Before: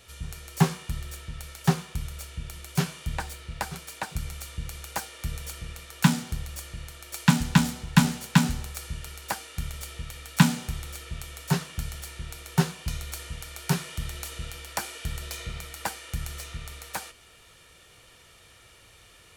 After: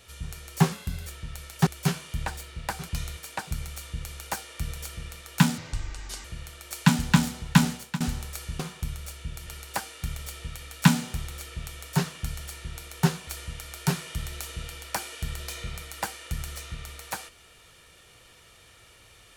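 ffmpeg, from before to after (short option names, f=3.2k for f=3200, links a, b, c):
-filter_complex "[0:a]asplit=12[a][b][c][d][e][f][g][h][i][j][k][l];[a]atrim=end=0.724[m];[b]atrim=start=0.72:end=1.12,asetpts=PTS-STARTPTS,asetrate=50715,aresample=44100,atrim=end_sample=15339,asetpts=PTS-STARTPTS[n];[c]atrim=start=1.116:end=1.722[o];[d]atrim=start=2.588:end=3.812[p];[e]atrim=start=12.818:end=13.102[q];[f]atrim=start=3.808:end=6.224[r];[g]atrim=start=6.22:end=6.66,asetpts=PTS-STARTPTS,asetrate=29106,aresample=44100[s];[h]atrim=start=6.656:end=8.42,asetpts=PTS-STARTPTS,afade=t=out:st=1.474:d=0.29:silence=0.0707946[t];[i]atrim=start=8.42:end=9.012,asetpts=PTS-STARTPTS,afade=t=in:d=0.004:c=hsin:silence=0.0707946[u];[j]atrim=start=1.718:end=2.592[v];[k]atrim=start=9.008:end=12.822[w];[l]atrim=start=13.098[x];[m][n]acrossfade=d=0.004:c1=hsin:c2=hsin[y];[y][o]acrossfade=d=0.004:c1=hsin:c2=hsin[z];[z][p]acrossfade=d=0.004:c1=hsin:c2=hsin[aa];[aa][q]acrossfade=d=0.004:c1=hsin:c2=hsin[ab];[ab][r]acrossfade=d=0.004:c1=hsin:c2=hsin[ac];[ac][s]acrossfade=d=0.004:c1=hsin:c2=hsin[ad];[t][u]concat=n=2:v=0:a=1[ae];[ad][ae]acrossfade=d=0.004:c1=hsin:c2=hsin[af];[af][v]acrossfade=d=0.004:c1=hsin:c2=hsin[ag];[ag][w]acrossfade=d=0.004:c1=hsin:c2=hsin[ah];[ah][x]acrossfade=d=0.004:c1=hsin:c2=hsin"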